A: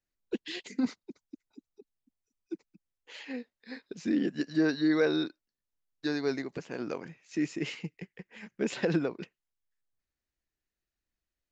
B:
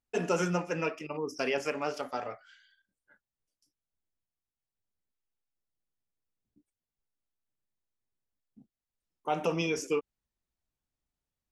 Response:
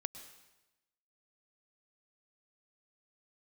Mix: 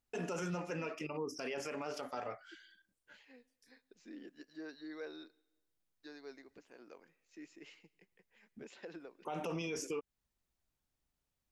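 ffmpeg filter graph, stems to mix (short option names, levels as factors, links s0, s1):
-filter_complex "[0:a]highpass=330,volume=0.1,asplit=2[s0][s1];[s1]volume=0.224[s2];[1:a]alimiter=level_in=1.26:limit=0.0631:level=0:latency=1:release=28,volume=0.794,volume=1.33[s3];[2:a]atrim=start_sample=2205[s4];[s2][s4]afir=irnorm=-1:irlink=0[s5];[s0][s3][s5]amix=inputs=3:normalize=0,alimiter=level_in=2.24:limit=0.0631:level=0:latency=1:release=274,volume=0.447"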